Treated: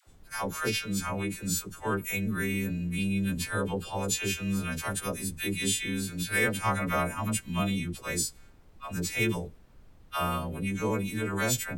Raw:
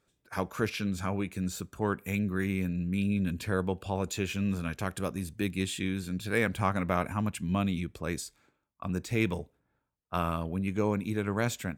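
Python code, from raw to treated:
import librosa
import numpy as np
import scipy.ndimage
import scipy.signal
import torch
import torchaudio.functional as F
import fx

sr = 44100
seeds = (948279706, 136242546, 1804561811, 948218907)

y = fx.freq_snap(x, sr, grid_st=2)
y = fx.dmg_noise_colour(y, sr, seeds[0], colour='brown', level_db=-53.0)
y = fx.dispersion(y, sr, late='lows', ms=71.0, hz=640.0)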